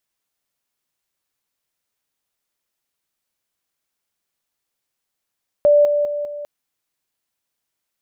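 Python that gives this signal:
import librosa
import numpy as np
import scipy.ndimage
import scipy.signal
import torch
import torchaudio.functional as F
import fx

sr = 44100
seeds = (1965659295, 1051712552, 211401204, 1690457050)

y = fx.level_ladder(sr, hz=586.0, from_db=-9.0, step_db=-6.0, steps=4, dwell_s=0.2, gap_s=0.0)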